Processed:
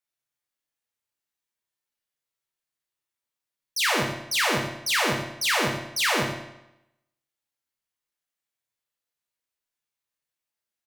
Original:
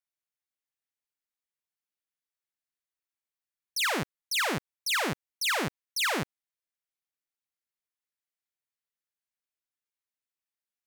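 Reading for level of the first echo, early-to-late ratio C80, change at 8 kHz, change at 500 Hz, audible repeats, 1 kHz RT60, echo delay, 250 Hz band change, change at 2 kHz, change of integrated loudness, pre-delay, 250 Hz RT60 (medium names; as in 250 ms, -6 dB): -8.5 dB, 5.5 dB, +5.0 dB, +6.5 dB, 1, 0.90 s, 89 ms, +4.5 dB, +5.0 dB, +5.0 dB, 8 ms, 0.85 s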